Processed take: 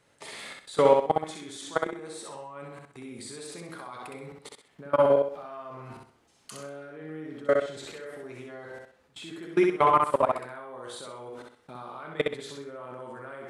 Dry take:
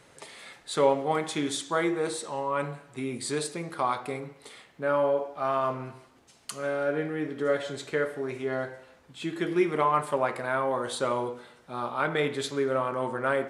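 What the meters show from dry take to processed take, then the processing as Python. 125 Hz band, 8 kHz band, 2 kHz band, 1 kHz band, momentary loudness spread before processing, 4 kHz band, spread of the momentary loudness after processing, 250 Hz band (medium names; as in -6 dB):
-4.5 dB, -6.0 dB, -5.5 dB, 0.0 dB, 14 LU, -4.5 dB, 21 LU, -3.0 dB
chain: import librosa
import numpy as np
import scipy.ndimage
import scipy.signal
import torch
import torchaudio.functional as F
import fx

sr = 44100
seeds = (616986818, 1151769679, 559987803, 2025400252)

y = fx.level_steps(x, sr, step_db=24)
y = fx.echo_feedback(y, sr, ms=64, feedback_pct=33, wet_db=-3)
y = y * 10.0 ** (5.0 / 20.0)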